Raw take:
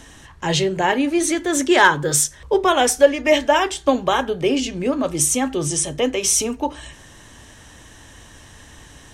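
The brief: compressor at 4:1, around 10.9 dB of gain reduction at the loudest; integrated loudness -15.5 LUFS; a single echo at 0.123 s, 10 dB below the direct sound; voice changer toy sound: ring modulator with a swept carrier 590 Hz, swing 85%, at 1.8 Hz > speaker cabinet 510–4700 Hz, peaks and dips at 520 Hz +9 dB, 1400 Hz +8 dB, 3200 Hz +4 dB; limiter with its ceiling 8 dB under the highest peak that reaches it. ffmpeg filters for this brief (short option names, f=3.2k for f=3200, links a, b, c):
-af "acompressor=threshold=-20dB:ratio=4,alimiter=limit=-16.5dB:level=0:latency=1,aecho=1:1:123:0.316,aeval=exprs='val(0)*sin(2*PI*590*n/s+590*0.85/1.8*sin(2*PI*1.8*n/s))':c=same,highpass=510,equalizer=f=520:t=q:w=4:g=9,equalizer=f=1.4k:t=q:w=4:g=8,equalizer=f=3.2k:t=q:w=4:g=4,lowpass=f=4.7k:w=0.5412,lowpass=f=4.7k:w=1.3066,volume=11dB"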